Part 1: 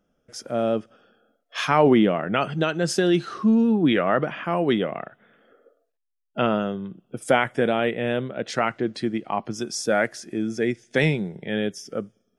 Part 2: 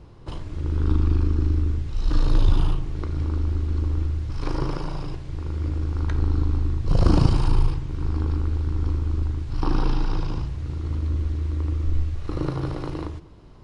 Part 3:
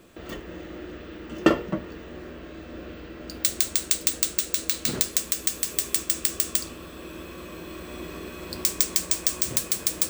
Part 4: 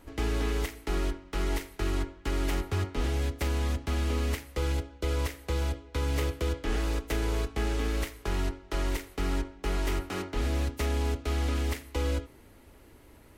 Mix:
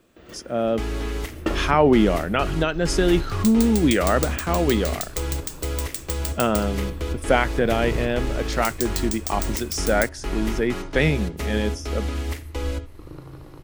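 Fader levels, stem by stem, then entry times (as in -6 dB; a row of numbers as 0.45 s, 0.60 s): +0.5 dB, -13.5 dB, -7.5 dB, +1.5 dB; 0.00 s, 0.70 s, 0.00 s, 0.60 s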